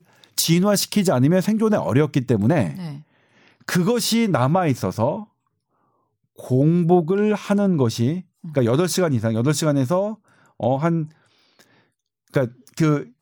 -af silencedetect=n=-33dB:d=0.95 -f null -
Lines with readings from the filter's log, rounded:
silence_start: 5.23
silence_end: 6.39 | silence_duration: 1.16